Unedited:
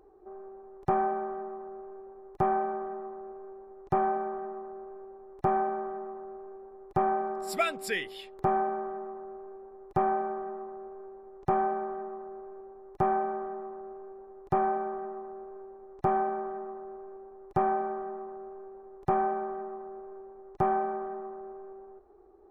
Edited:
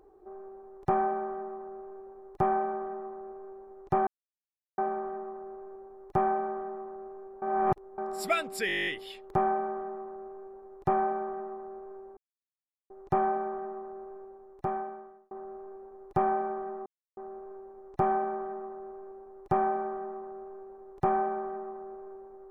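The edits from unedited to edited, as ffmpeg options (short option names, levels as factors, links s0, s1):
-filter_complex "[0:a]asplit=17[s0][s1][s2][s3][s4][s5][s6][s7][s8][s9][s10][s11][s12][s13][s14][s15][s16];[s0]atrim=end=4.07,asetpts=PTS-STARTPTS,afade=t=out:st=4.066:d=0.004:c=hsin,apad=pad_dur=0.71[s17];[s1]atrim=start=4.07:end=6.712,asetpts=PTS-STARTPTS,afade=t=in:d=0.004:c=hsin[s18];[s2]atrim=start=6.708:end=7.272,asetpts=PTS-STARTPTS,areverse[s19];[s3]atrim=start=7.268:end=7.982[s20];[s4]atrim=start=7.958:end=7.982[s21];[s5]atrim=start=7.958:end=7.982[s22];[s6]atrim=start=7.958:end=7.982[s23];[s7]atrim=start=7.958:end=7.982[s24];[s8]atrim=start=7.958:end=7.982[s25];[s9]atrim=start=7.958:end=7.982[s26];[s10]atrim=start=7.958:end=7.982[s27];[s11]atrim=start=7.958:end=7.982[s28];[s12]atrim=start=7.958:end=7.982[s29];[s13]atrim=start=7.958:end=11.26,asetpts=PTS-STARTPTS,afade=t=out:st=3.298:d=0.004:c=hsin,apad=pad_dur=0.73[s30];[s14]atrim=start=11.26:end=13.67,asetpts=PTS-STARTPTS,afade=t=in:d=0.004:c=hsin,afade=t=out:st=1.25:d=1.16[s31];[s15]atrim=start=13.67:end=15.22,asetpts=PTS-STARTPTS,afade=t=in:d=0.004:c=hsin,afade=t=out:st=1.546:d=0.004:c=hsin,apad=pad_dur=0.31[s32];[s16]atrim=start=15.22,asetpts=PTS-STARTPTS,afade=t=in:d=0.004:c=hsin[s33];[s17][s18]concat=n=2:v=0:a=1[s34];[s34][s19]acrossfade=d=0.004:c1=hsin:c2=hsin[s35];[s35][s20]acrossfade=d=0.004:c1=hsin:c2=hsin[s36];[s36][s21]acrossfade=d=0.004:c1=hsin:c2=hsin[s37];[s37][s22]acrossfade=d=0.004:c1=hsin:c2=hsin[s38];[s38][s23]acrossfade=d=0.004:c1=hsin:c2=hsin[s39];[s39][s24]acrossfade=d=0.004:c1=hsin:c2=hsin[s40];[s40][s25]acrossfade=d=0.004:c1=hsin:c2=hsin[s41];[s41][s26]acrossfade=d=0.004:c1=hsin:c2=hsin[s42];[s42][s27]acrossfade=d=0.004:c1=hsin:c2=hsin[s43];[s43][s28]acrossfade=d=0.004:c1=hsin:c2=hsin[s44];[s44][s29]acrossfade=d=0.004:c1=hsin:c2=hsin[s45];[s30][s31][s32][s33]concat=n=4:v=0:a=1[s46];[s45][s46]acrossfade=d=0.004:c1=hsin:c2=hsin"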